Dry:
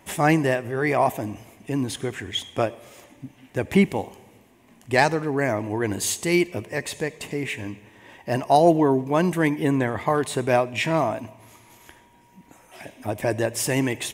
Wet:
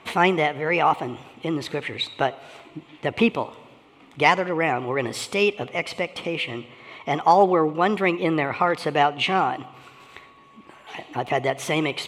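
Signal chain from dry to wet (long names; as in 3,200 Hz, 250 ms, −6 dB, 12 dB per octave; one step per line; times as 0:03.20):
low-pass filter 2,500 Hz 12 dB per octave
spectral tilt +2 dB per octave
in parallel at −3 dB: downward compressor, threshold −35 dBFS, peak gain reduction 20.5 dB
on the sum: speed change +17%
level +1.5 dB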